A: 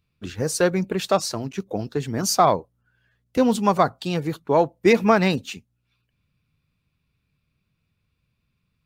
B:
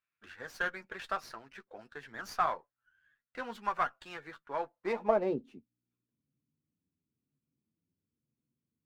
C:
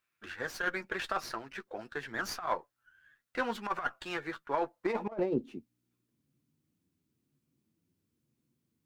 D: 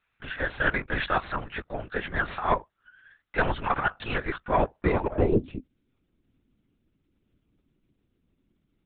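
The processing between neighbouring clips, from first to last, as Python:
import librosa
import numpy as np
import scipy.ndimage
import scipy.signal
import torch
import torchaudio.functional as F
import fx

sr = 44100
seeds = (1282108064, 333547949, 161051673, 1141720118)

y1 = fx.filter_sweep_bandpass(x, sr, from_hz=1600.0, to_hz=290.0, start_s=4.68, end_s=5.47, q=3.0)
y1 = fx.chorus_voices(y1, sr, voices=4, hz=0.49, base_ms=11, depth_ms=3.2, mix_pct=30)
y1 = fx.running_max(y1, sr, window=3)
y2 = fx.over_compress(y1, sr, threshold_db=-34.0, ratio=-0.5)
y2 = fx.peak_eq(y2, sr, hz=340.0, db=5.0, octaves=0.24)
y2 = y2 * 10.0 ** (3.5 / 20.0)
y3 = fx.lpc_vocoder(y2, sr, seeds[0], excitation='whisper', order=10)
y3 = y3 * 10.0 ** (8.5 / 20.0)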